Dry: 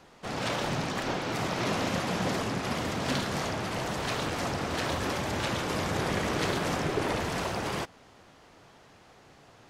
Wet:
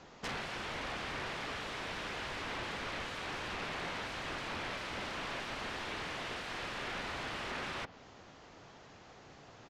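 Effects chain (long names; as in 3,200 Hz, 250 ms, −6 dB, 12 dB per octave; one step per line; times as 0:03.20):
downsampling to 16,000 Hz
wrap-around overflow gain 31.5 dB
treble cut that deepens with the level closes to 2,700 Hz, closed at −33.5 dBFS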